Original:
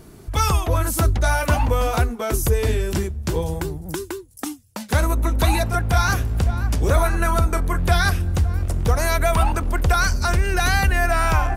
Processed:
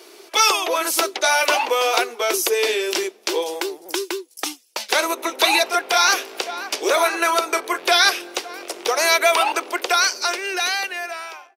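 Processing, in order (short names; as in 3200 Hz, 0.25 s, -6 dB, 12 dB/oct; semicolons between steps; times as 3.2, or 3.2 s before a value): ending faded out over 2.07 s; elliptic high-pass 360 Hz, stop band 80 dB; band shelf 3600 Hz +8.5 dB; gain +4 dB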